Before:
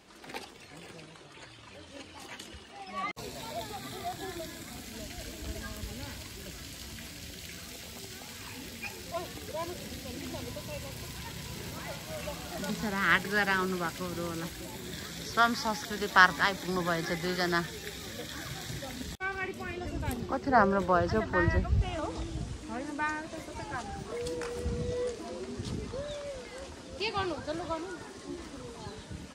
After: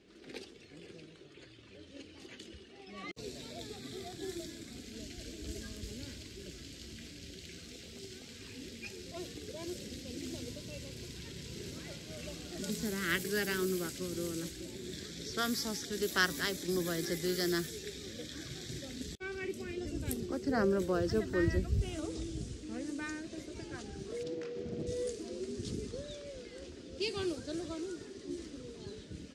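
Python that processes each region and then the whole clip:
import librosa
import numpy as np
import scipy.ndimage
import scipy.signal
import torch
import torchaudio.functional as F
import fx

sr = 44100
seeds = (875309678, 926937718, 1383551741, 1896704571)

y = fx.chain(x, sr, fx.highpass(hz=110.0, slope=24),
    fx.air_absorb(metres=180.0),
    fx.doppler_dist(depth_ms=0.7), at=(24.23, 24.87))
y = fx.curve_eq(y, sr, hz=(160.0, 400.0, 910.0, 1500.0, 14000.0), db=(0, 6, -15, -6, 6))
y = fx.env_lowpass(y, sr, base_hz=3000.0, full_db=-26.5)
y = fx.high_shelf(y, sr, hz=4200.0, db=6.5)
y = y * 10.0 ** (-4.5 / 20.0)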